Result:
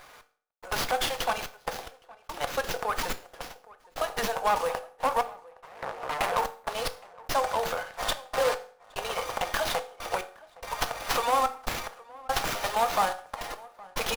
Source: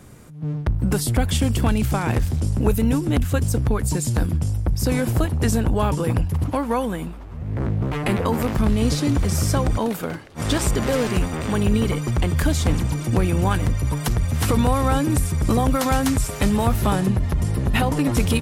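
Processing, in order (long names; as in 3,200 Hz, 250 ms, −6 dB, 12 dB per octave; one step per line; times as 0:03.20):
inverse Chebyshev high-pass filter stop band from 240 Hz, stop band 50 dB
dynamic equaliser 2,200 Hz, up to −6 dB, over −44 dBFS, Q 1.1
tempo change 1.3×
gate pattern "x..xxxx." 72 BPM −60 dB
in parallel at −9.5 dB: wrap-around overflow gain 21.5 dB
on the sum: slap from a distant wall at 140 metres, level −21 dB
on a send at −8 dB: convolution reverb RT60 0.50 s, pre-delay 3 ms
on the sum: windowed peak hold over 5 samples
level +1.5 dB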